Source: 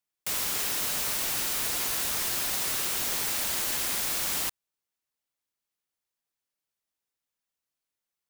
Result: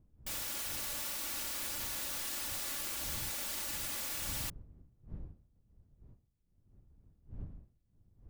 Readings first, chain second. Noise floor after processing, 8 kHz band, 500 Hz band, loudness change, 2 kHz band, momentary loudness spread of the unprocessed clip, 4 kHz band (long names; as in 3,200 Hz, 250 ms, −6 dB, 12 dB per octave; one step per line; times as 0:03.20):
−74 dBFS, −9.5 dB, −10.0 dB, −9.5 dB, −9.5 dB, 1 LU, −9.5 dB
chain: lower of the sound and its delayed copy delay 3.5 ms
wind on the microphone 95 Hz −44 dBFS
level −8 dB